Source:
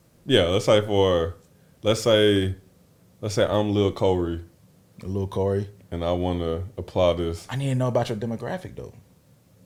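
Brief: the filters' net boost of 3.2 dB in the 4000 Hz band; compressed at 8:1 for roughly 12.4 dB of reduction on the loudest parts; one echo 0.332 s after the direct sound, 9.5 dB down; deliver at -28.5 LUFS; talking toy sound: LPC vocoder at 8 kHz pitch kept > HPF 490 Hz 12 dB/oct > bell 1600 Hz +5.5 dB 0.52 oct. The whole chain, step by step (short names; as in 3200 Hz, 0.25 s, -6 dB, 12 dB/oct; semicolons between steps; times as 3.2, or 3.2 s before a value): bell 4000 Hz +4 dB; compressor 8:1, threshold -26 dBFS; echo 0.332 s -9.5 dB; LPC vocoder at 8 kHz pitch kept; HPF 490 Hz 12 dB/oct; bell 1600 Hz +5.5 dB 0.52 oct; gain +7 dB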